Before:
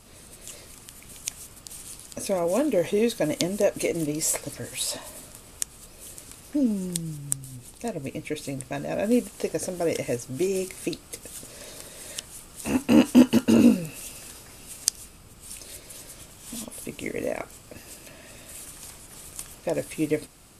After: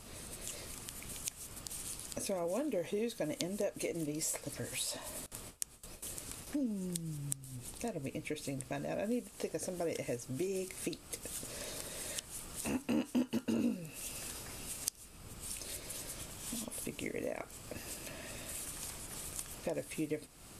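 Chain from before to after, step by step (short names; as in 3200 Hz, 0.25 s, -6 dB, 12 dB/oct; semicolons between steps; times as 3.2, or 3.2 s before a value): 5.26–6.47 gate with hold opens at -35 dBFS; compressor 2.5:1, threshold -40 dBFS, peak gain reduction 19.5 dB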